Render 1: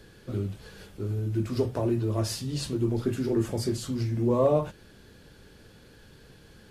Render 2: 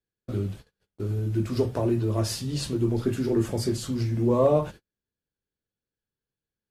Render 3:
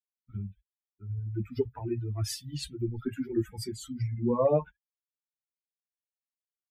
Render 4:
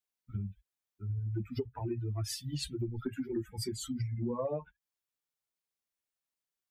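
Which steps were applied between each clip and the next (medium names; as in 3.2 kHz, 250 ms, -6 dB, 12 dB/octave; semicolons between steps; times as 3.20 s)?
gate -41 dBFS, range -42 dB; trim +2 dB
expander on every frequency bin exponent 3
compression 6:1, threshold -36 dBFS, peak gain reduction 15.5 dB; trim +3.5 dB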